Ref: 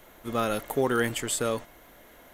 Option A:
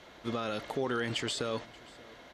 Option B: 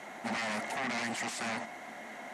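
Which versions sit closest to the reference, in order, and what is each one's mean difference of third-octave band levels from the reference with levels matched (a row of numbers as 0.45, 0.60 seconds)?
A, B; 6.5, 10.5 decibels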